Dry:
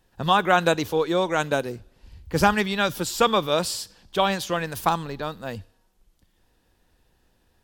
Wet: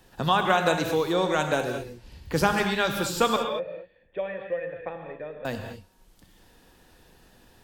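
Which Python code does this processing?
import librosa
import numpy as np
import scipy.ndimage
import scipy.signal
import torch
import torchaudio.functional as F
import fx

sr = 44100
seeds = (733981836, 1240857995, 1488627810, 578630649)

y = fx.formant_cascade(x, sr, vowel='e', at=(3.36, 5.45))
y = fx.rev_gated(y, sr, seeds[0], gate_ms=250, shape='flat', drr_db=5.0)
y = fx.band_squash(y, sr, depth_pct=40)
y = y * librosa.db_to_amplitude(-2.5)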